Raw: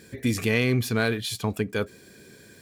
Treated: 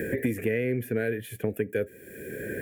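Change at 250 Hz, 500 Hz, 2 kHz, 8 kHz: -3.5 dB, +0.5 dB, -5.0 dB, -10.5 dB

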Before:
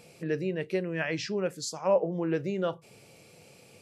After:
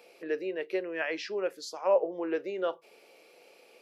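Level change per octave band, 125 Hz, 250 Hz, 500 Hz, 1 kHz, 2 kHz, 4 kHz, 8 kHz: under -20 dB, -5.5 dB, -0.5 dB, 0.0 dB, -0.5 dB, -3.0 dB, -9.0 dB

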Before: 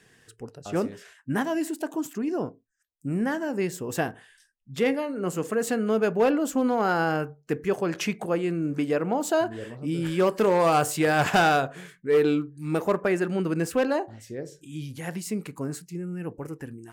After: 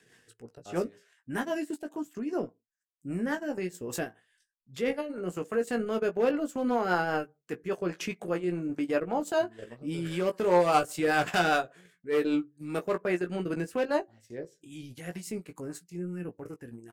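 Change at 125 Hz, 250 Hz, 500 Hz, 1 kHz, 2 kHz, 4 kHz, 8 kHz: -7.5 dB, -5.5 dB, -4.5 dB, -4.5 dB, -3.5 dB, -4.0 dB, -7.5 dB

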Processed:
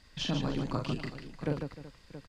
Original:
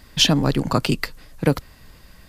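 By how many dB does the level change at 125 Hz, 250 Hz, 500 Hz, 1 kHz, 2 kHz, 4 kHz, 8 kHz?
-12.0 dB, -12.5 dB, -12.5 dB, -13.5 dB, -15.5 dB, -18.0 dB, -22.0 dB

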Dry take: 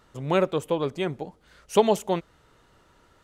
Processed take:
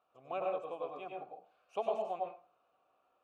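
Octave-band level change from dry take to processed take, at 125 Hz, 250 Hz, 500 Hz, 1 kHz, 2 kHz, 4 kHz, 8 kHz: under -25 dB, -24.0 dB, -13.5 dB, -9.5 dB, -16.5 dB, -21.5 dB, under -30 dB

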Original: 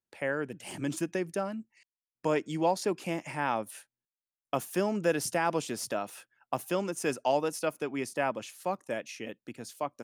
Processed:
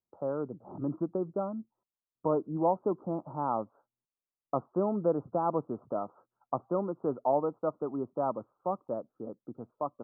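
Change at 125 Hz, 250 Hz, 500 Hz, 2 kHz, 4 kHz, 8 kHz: 0.0 dB, 0.0 dB, 0.0 dB, under -20 dB, under -40 dB, under -40 dB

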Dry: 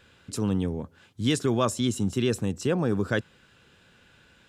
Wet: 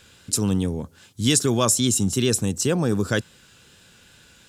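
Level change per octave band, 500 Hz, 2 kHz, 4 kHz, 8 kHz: +3.0 dB, +3.5 dB, +8.0 dB, +15.5 dB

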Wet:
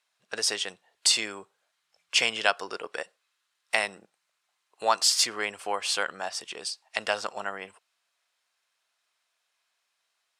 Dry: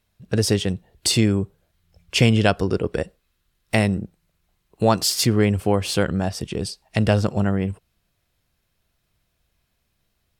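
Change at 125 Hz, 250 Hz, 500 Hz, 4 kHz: under -35 dB, -25.0 dB, -11.5 dB, -0.5 dB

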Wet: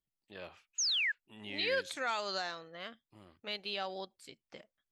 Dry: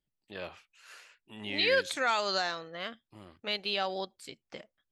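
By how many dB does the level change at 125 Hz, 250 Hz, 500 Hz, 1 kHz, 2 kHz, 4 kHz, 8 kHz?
-6.5 dB, -6.5 dB, -6.5 dB, -6.5 dB, -3.5 dB, -2.5 dB, +6.5 dB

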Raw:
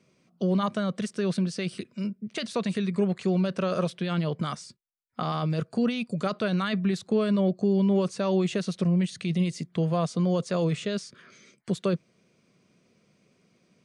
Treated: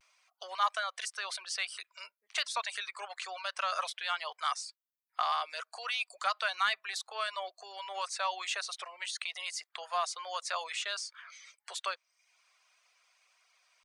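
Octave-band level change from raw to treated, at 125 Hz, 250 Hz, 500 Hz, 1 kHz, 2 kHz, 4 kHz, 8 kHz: under -40 dB, under -40 dB, -16.5 dB, +1.5 dB, +3.0 dB, +2.5 dB, +3.5 dB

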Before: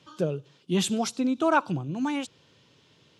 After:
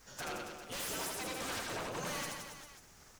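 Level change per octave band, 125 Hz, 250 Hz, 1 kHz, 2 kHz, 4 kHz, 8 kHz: -17.0 dB, -20.5 dB, -12.5 dB, -6.5 dB, -6.0 dB, -3.5 dB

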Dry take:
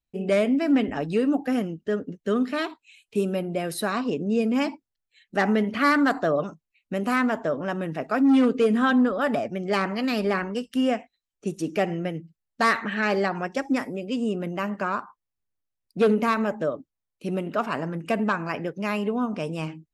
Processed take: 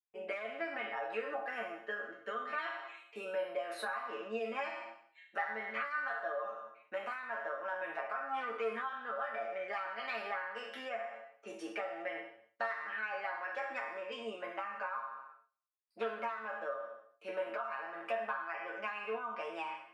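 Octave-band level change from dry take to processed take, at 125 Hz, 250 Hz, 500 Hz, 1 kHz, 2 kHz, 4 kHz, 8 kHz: under -30 dB, -29.5 dB, -14.0 dB, -10.5 dB, -9.0 dB, -14.0 dB, under -15 dB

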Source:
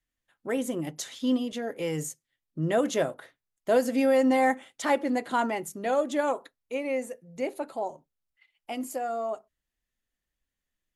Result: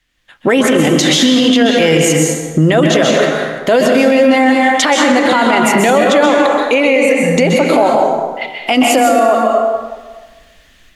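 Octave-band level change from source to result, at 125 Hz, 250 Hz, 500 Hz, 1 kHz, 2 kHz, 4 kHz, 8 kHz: +21.0 dB, +18.0 dB, +17.0 dB, +17.5 dB, +21.0 dB, +26.0 dB, +21.0 dB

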